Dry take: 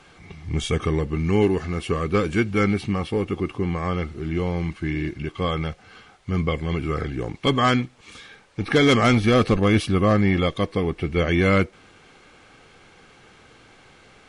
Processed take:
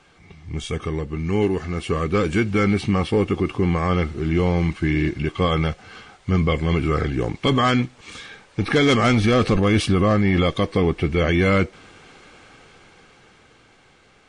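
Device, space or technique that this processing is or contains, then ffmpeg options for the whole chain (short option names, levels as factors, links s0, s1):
low-bitrate web radio: -af "dynaudnorm=f=230:g=17:m=5.62,alimiter=limit=0.473:level=0:latency=1:release=16,volume=0.668" -ar 22050 -c:a libmp3lame -b:a 48k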